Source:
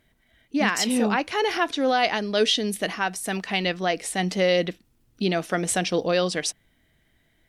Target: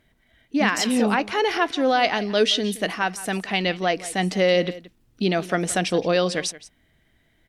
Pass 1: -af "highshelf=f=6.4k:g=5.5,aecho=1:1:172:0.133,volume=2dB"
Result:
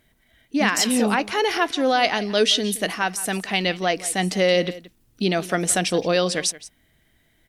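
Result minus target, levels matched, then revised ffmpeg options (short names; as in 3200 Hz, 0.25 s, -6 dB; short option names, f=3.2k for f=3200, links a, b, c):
8000 Hz band +5.5 dB
-af "highshelf=f=6.4k:g=-5,aecho=1:1:172:0.133,volume=2dB"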